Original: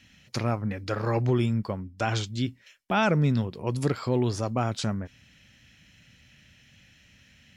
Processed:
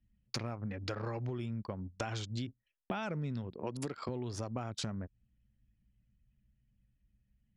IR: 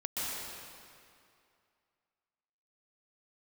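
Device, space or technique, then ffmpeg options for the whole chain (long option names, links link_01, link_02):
serial compression, leveller first: -filter_complex "[0:a]asettb=1/sr,asplit=3[link_01][link_02][link_03];[link_01]atrim=end=3.544[link_04];[link_02]atrim=start=3.54:end=4.09,asetpts=PTS-STARTPTS,afade=type=in:duration=0.004:curve=qsin,afade=type=out:start_time=0.546:duration=0.004:curve=qsin,highpass=180[link_05];[link_03]atrim=start=4.086[link_06];[link_04][link_05]acrossfade=duration=0.004:curve1=hsin:curve2=qsin[link_07];[link_07][link_06]acrossfade=duration=0.004:curve1=qsin:curve2=hsin,anlmdn=1,acompressor=threshold=-26dB:ratio=2.5,acompressor=threshold=-38dB:ratio=6,volume=2.5dB"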